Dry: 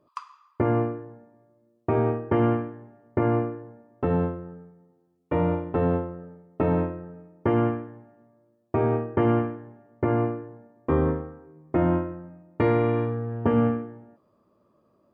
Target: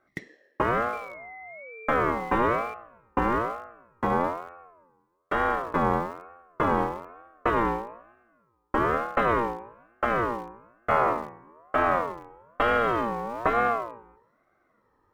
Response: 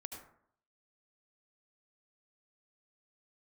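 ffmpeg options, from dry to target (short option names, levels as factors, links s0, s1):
-filter_complex "[0:a]asettb=1/sr,asplit=3[s0][s1][s2];[s0]atrim=end=0.934[s3];[s1]atrim=start=0.93:end=2.74,asetpts=PTS-STARTPTS,afade=t=in:d=0.004:c=qsin,afade=t=out:st=1.806:d=0.004:c=qsin,aeval=exprs='val(0)+0.0141*sin(2*PI*1400*n/s)':c=same[s4];[s2]atrim=start=2.736[s5];[s3][s4]acrossfade=d=0.004:c1=hsin:c2=qsin[s6];[s6][s5]acrossfade=d=0.004:c1=qsin:c2=hsin,asplit=2[s7][s8];[s8]aeval=exprs='val(0)*gte(abs(val(0)),0.0237)':c=same,volume=0.355[s9];[s7][s9]amix=inputs=2:normalize=0,bandreject=f=58.87:t=h:w=4,bandreject=f=117.74:t=h:w=4,bandreject=f=176.61:t=h:w=4,bandreject=f=235.48:t=h:w=4,bandreject=f=294.35:t=h:w=4,bandreject=f=353.22:t=h:w=4,bandreject=f=412.09:t=h:w=4,bandreject=f=470.96:t=h:w=4,bandreject=f=529.83:t=h:w=4,aeval=exprs='val(0)*sin(2*PI*800*n/s+800*0.2/1.1*sin(2*PI*1.1*n/s))':c=same"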